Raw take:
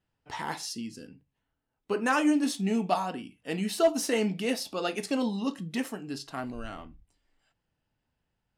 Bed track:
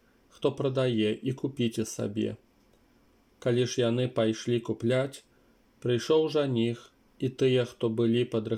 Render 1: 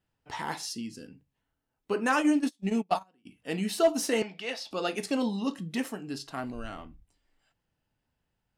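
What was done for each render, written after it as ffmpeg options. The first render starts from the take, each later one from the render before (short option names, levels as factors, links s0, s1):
-filter_complex "[0:a]asplit=3[s0][s1][s2];[s0]afade=t=out:st=2.15:d=0.02[s3];[s1]agate=range=0.0282:threshold=0.0398:ratio=16:release=100:detection=peak,afade=t=in:st=2.15:d=0.02,afade=t=out:st=3.25:d=0.02[s4];[s2]afade=t=in:st=3.25:d=0.02[s5];[s3][s4][s5]amix=inputs=3:normalize=0,asettb=1/sr,asplit=3[s6][s7][s8];[s6]atrim=end=4.224[s9];[s7]atrim=start=4.22:end=4.71,asetpts=PTS-STARTPTS,afade=t=in:d=0.004:c=qsin,afade=t=out:st=0.486:d=0.004:c=qsin,acrossover=split=540 5800:gain=0.141 1 0.141[s10][s11][s12];[s10][s11][s12]amix=inputs=3:normalize=0[s13];[s8]atrim=start=4.706[s14];[s9][s13]acrossfade=d=0.004:c1=hsin:c2=qsin[s15];[s15][s14]acrossfade=d=0.004:c1=qsin:c2=hsin"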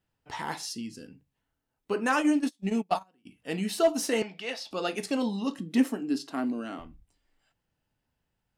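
-filter_complex "[0:a]asettb=1/sr,asplit=3[s0][s1][s2];[s0]atrim=end=5.594[s3];[s1]atrim=start=5.59:end=6.79,asetpts=PTS-STARTPTS,afade=t=in:d=0.004:c=qsin,afade=t=out:st=1.196:d=0.004:c=qsin,highpass=f=260:t=q:w=3.1[s4];[s2]atrim=start=6.786[s5];[s3][s4]acrossfade=d=0.004:c1=hsin:c2=qsin[s6];[s6][s5]acrossfade=d=0.004:c1=qsin:c2=hsin"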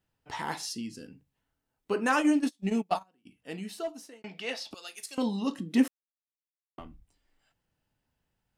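-filter_complex "[0:a]asettb=1/sr,asplit=3[s0][s1][s2];[s0]atrim=end=4.744[s3];[s1]atrim=start=4.74:end=5.18,asetpts=PTS-STARTPTS,afade=t=in:d=0.004:c=qsin,afade=t=out:st=0.436:d=0.004:c=qsin,aderivative[s4];[s2]atrim=start=5.176[s5];[s3][s4]acrossfade=d=0.004:c1=hsin:c2=qsin[s6];[s6][s5]acrossfade=d=0.004:c1=qsin:c2=hsin,asplit=4[s7][s8][s9][s10];[s7]atrim=end=4.24,asetpts=PTS-STARTPTS,afade=t=out:st=2.7:d=1.54[s11];[s8]atrim=start=4.24:end=5.88,asetpts=PTS-STARTPTS,afade=t=in:d=0.004:c=hsin,afade=t=out:st=1.636:d=0.004:c=hsin[s12];[s9]atrim=start=5.88:end=6.78,asetpts=PTS-STARTPTS,volume=0[s13];[s10]atrim=start=6.78,asetpts=PTS-STARTPTS,afade=t=in:d=0.004:c=hsin[s14];[s11][s12][s13][s14]concat=n=4:v=0:a=1"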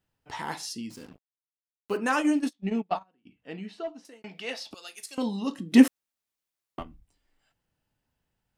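-filter_complex "[0:a]asettb=1/sr,asplit=3[s0][s1][s2];[s0]atrim=end=0.904[s3];[s1]atrim=start=0.9:end=1.97,asetpts=PTS-STARTPTS,afade=t=in:d=0.004:c=qsin,afade=t=out:st=1.066:d=0.004:c=qsin,acrusher=bits=7:mix=0:aa=0.5[s4];[s2]atrim=start=1.966[s5];[s3][s4]acrossfade=d=0.004:c1=hsin:c2=qsin[s6];[s6][s5]acrossfade=d=0.004:c1=qsin:c2=hsin,asettb=1/sr,asplit=3[s7][s8][s9];[s7]atrim=end=2.534[s10];[s8]atrim=start=2.53:end=4.05,asetpts=PTS-STARTPTS,afade=t=in:d=0.004:c=qsin,afade=t=out:st=1.516:d=0.004:c=qsin,lowpass=3400[s11];[s9]atrim=start=4.046[s12];[s10][s11]acrossfade=d=0.004:c1=hsin:c2=qsin[s13];[s13][s12]acrossfade=d=0.004:c1=qsin:c2=hsin,asplit=3[s14][s15][s16];[s14]atrim=end=5.722[s17];[s15]atrim=start=5.718:end=6.832,asetpts=PTS-STARTPTS,volume=2.51[s18];[s16]atrim=start=6.828[s19];[s17][s18]acrossfade=d=0.004:c1=hsin:c2=hsin[s20];[s20][s19]acrossfade=d=0.004:c1=hsin:c2=hsin"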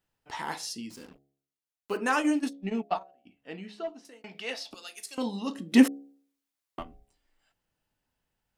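-af "equalizer=f=110:w=0.58:g=-5,bandreject=f=69.54:t=h:w=4,bandreject=f=139.08:t=h:w=4,bandreject=f=208.62:t=h:w=4,bandreject=f=278.16:t=h:w=4,bandreject=f=347.7:t=h:w=4,bandreject=f=417.24:t=h:w=4,bandreject=f=486.78:t=h:w=4,bandreject=f=556.32:t=h:w=4,bandreject=f=625.86:t=h:w=4,bandreject=f=695.4:t=h:w=4,bandreject=f=764.94:t=h:w=4"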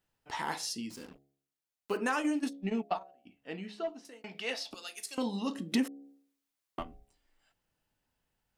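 -af "acompressor=threshold=0.0398:ratio=4"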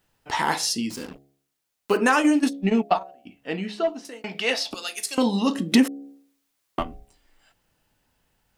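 -af "volume=3.98"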